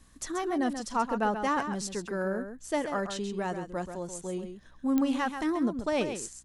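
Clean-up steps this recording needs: de-click; de-hum 62.9 Hz, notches 5; inverse comb 0.133 s -8.5 dB

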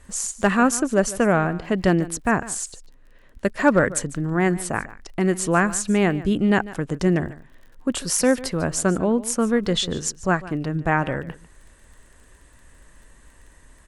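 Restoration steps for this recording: clip repair -6 dBFS; de-click; inverse comb 0.147 s -17.5 dB

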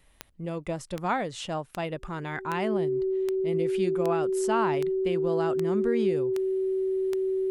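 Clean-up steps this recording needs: de-click; notch 380 Hz, Q 30

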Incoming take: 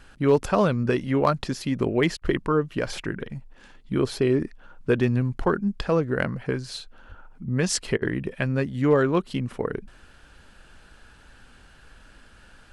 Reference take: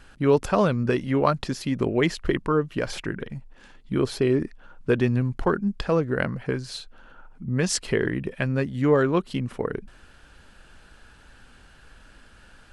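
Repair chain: clip repair -10 dBFS; 7.08–7.2 HPF 140 Hz 24 dB/oct; interpolate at 2.17/7.97, 46 ms

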